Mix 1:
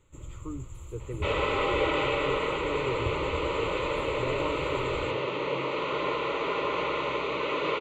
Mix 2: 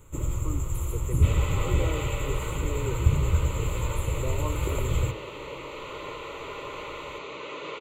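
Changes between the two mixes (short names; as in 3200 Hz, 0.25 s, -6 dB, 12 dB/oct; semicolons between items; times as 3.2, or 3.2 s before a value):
first sound: remove pre-emphasis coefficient 0.8; second sound -9.0 dB; master: remove air absorption 140 m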